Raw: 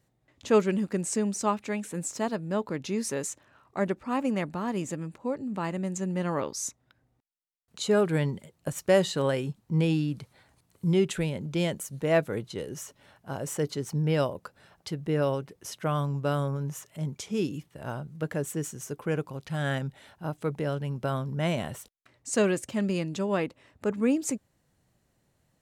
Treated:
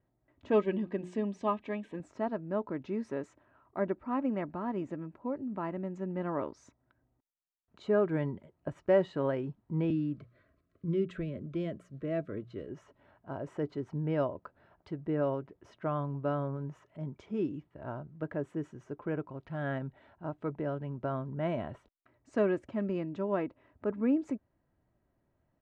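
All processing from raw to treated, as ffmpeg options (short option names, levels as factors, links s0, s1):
-filter_complex "[0:a]asettb=1/sr,asplit=3[s0][s1][s2];[s0]atrim=end=0.514[s3];[s1]atrim=start=0.51:end=2,asetpts=PTS-STARTPTS,afade=t=in:d=0.004:c=qsin,afade=t=out:st=1.486:d=0.004:c=qsin,asuperstop=centerf=1400:order=20:qfactor=5.3,equalizer=f=3300:t=o:w=0.64:g=11,bandreject=f=60:t=h:w=6,bandreject=f=120:t=h:w=6,bandreject=f=180:t=h:w=6,bandreject=f=240:t=h:w=6,bandreject=f=300:t=h:w=6,bandreject=f=360:t=h:w=6[s4];[s2]atrim=start=1.996[s5];[s3][s4]acrossfade=d=0.004:c1=hsin:c2=qsin[s6];[s6][s5]acrossfade=d=0.004:c1=qsin:c2=hsin,asettb=1/sr,asplit=3[s7][s8][s9];[s7]atrim=end=9.904[s10];[s8]atrim=start=9.9:end=12.69,asetpts=PTS-STARTPTS,afade=t=in:d=0.004:c=qsin,afade=t=out:st=2.786:d=0.004:c=qsin,bandreject=f=60:t=h:w=6,bandreject=f=120:t=h:w=6,bandreject=f=180:t=h:w=6,acrossover=split=330|3000[s11][s12][s13];[s12]acompressor=threshold=0.0126:ratio=2:attack=3.2:release=140:knee=2.83:detection=peak[s14];[s11][s14][s13]amix=inputs=3:normalize=0,asuperstop=centerf=840:order=20:qfactor=2.6[s15];[s9]atrim=start=12.686[s16];[s10][s15]acrossfade=d=0.004:c1=hsin:c2=qsin[s17];[s17][s16]acrossfade=d=0.004:c1=qsin:c2=hsin,lowpass=1500,aecho=1:1:3.1:0.35,volume=0.631"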